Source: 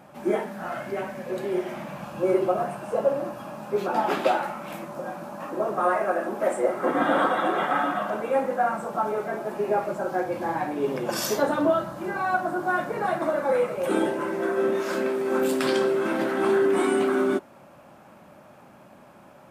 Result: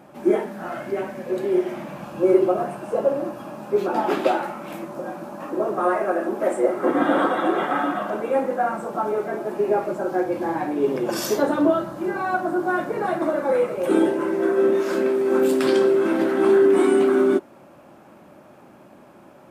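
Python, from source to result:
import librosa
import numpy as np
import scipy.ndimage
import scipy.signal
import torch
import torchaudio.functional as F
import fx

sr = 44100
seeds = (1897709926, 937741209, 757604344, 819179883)

y = fx.peak_eq(x, sr, hz=340.0, db=7.5, octaves=0.86)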